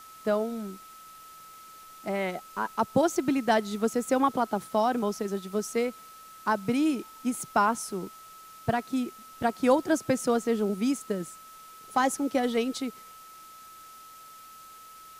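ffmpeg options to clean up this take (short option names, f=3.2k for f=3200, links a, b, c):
-af "bandreject=f=1.3k:w=30,afwtdn=0.0022"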